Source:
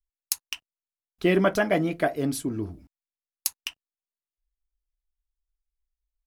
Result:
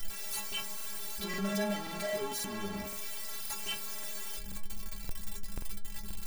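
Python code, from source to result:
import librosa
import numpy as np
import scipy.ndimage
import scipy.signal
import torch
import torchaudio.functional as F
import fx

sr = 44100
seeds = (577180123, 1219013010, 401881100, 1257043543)

y = np.sign(x) * np.sqrt(np.mean(np.square(x)))
y = fx.stiff_resonator(y, sr, f0_hz=200.0, decay_s=0.3, stiffness=0.008)
y = fx.buffer_crackle(y, sr, first_s=0.76, period_s=0.53, block=2048, kind='repeat')
y = F.gain(torch.from_numpy(y), 7.0).numpy()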